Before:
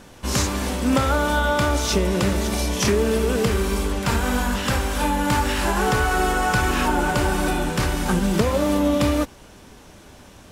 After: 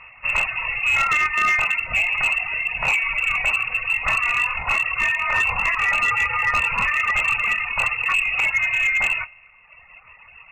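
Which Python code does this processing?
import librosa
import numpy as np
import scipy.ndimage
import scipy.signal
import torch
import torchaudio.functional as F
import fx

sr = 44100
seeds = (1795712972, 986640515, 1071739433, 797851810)

y = fx.octave_divider(x, sr, octaves=1, level_db=4.0)
y = fx.low_shelf(y, sr, hz=130.0, db=-8.0)
y = fx.fixed_phaser(y, sr, hz=1600.0, stages=8)
y = fx.doubler(y, sr, ms=24.0, db=-7.0)
y = fx.echo_feedback(y, sr, ms=259, feedback_pct=51, wet_db=-21)
y = fx.dereverb_blind(y, sr, rt60_s=1.3)
y = fx.over_compress(y, sr, threshold_db=-20.0, ratio=-0.5)
y = fx.freq_invert(y, sr, carrier_hz=2700)
y = np.clip(y, -10.0 ** (-18.0 / 20.0), 10.0 ** (-18.0 / 20.0))
y = fx.tilt_eq(y, sr, slope=-2.0)
y = y * 10.0 ** (6.0 / 20.0)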